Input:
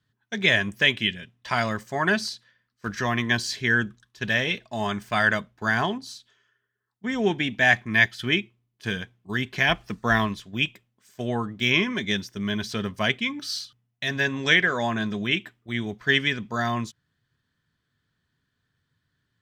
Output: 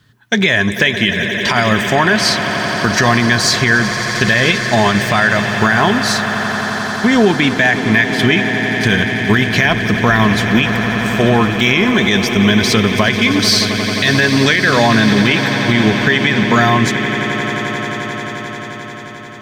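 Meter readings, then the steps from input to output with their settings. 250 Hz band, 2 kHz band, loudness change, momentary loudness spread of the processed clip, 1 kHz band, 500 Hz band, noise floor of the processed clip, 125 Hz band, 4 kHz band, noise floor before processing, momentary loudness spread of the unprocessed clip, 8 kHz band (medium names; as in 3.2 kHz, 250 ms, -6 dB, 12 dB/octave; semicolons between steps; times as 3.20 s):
+15.5 dB, +10.5 dB, +11.5 dB, 7 LU, +13.5 dB, +13.5 dB, -28 dBFS, +15.0 dB, +11.5 dB, -77 dBFS, 13 LU, +17.5 dB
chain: dynamic bell 2.9 kHz, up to -5 dB, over -37 dBFS, Q 4; compression 4:1, threshold -30 dBFS, peak gain reduction 14 dB; echo with a slow build-up 88 ms, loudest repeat 8, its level -16 dB; loudness maximiser +22.5 dB; trim -1 dB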